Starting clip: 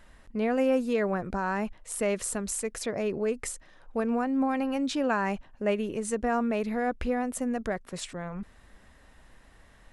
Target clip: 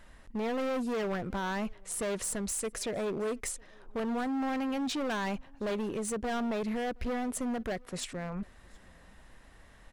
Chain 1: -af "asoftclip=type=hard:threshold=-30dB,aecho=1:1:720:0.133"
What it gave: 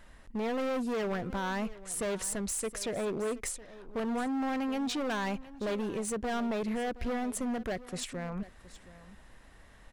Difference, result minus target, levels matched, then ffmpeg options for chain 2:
echo-to-direct +10.5 dB
-af "asoftclip=type=hard:threshold=-30dB,aecho=1:1:720:0.0398"

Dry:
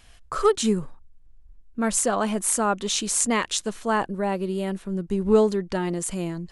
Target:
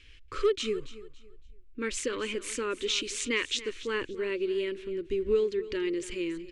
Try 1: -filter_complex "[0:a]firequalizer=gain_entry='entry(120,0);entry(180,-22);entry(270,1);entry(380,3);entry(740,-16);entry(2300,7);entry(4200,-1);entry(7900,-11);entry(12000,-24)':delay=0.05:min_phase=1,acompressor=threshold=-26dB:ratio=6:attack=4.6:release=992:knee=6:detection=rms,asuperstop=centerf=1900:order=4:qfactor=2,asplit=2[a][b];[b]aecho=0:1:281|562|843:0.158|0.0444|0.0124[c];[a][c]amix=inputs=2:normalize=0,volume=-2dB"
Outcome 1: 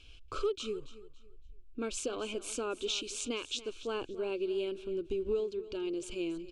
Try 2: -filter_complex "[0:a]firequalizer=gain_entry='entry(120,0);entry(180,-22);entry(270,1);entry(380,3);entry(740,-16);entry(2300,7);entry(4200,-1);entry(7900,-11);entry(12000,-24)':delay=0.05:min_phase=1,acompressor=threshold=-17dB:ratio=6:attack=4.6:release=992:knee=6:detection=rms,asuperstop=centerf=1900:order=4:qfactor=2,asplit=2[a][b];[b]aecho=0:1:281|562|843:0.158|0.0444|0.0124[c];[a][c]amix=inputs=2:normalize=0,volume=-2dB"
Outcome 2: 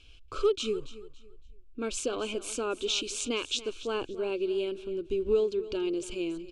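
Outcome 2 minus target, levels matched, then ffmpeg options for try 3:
2000 Hz band -6.0 dB
-filter_complex "[0:a]firequalizer=gain_entry='entry(120,0);entry(180,-22);entry(270,1);entry(380,3);entry(740,-16);entry(2300,7);entry(4200,-1);entry(7900,-11);entry(12000,-24)':delay=0.05:min_phase=1,acompressor=threshold=-17dB:ratio=6:attack=4.6:release=992:knee=6:detection=rms,asuperstop=centerf=720:order=4:qfactor=2,asplit=2[a][b];[b]aecho=0:1:281|562|843:0.158|0.0444|0.0124[c];[a][c]amix=inputs=2:normalize=0,volume=-2dB"

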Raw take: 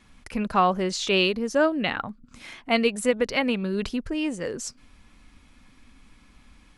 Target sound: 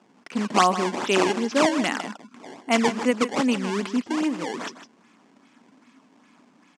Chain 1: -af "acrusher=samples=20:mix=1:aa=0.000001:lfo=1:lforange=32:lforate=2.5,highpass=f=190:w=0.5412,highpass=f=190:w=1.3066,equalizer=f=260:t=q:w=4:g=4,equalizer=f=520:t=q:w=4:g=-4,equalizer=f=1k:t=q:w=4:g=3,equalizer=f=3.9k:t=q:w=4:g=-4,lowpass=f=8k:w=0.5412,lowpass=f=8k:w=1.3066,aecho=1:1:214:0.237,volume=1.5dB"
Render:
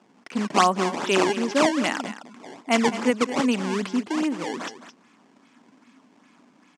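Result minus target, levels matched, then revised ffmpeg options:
echo 59 ms late
-af "acrusher=samples=20:mix=1:aa=0.000001:lfo=1:lforange=32:lforate=2.5,highpass=f=190:w=0.5412,highpass=f=190:w=1.3066,equalizer=f=260:t=q:w=4:g=4,equalizer=f=520:t=q:w=4:g=-4,equalizer=f=1k:t=q:w=4:g=3,equalizer=f=3.9k:t=q:w=4:g=-4,lowpass=f=8k:w=0.5412,lowpass=f=8k:w=1.3066,aecho=1:1:155:0.237,volume=1.5dB"

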